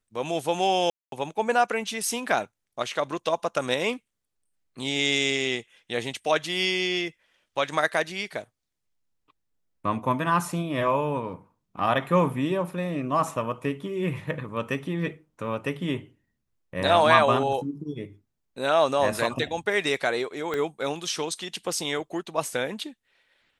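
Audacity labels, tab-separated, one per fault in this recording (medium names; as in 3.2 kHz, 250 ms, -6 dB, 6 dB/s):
0.900000	1.120000	dropout 222 ms
20.540000	20.540000	pop -16 dBFS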